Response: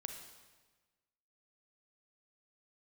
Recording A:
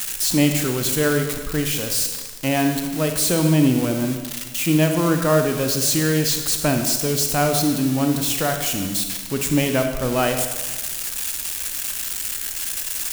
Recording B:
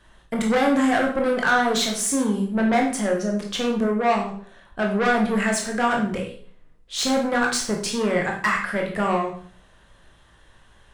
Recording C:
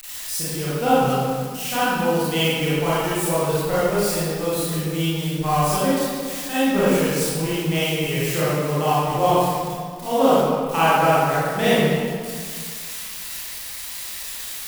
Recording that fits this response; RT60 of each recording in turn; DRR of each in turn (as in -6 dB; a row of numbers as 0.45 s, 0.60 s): A; 1.3 s, 0.50 s, 1.9 s; 4.5 dB, 0.0 dB, -11.0 dB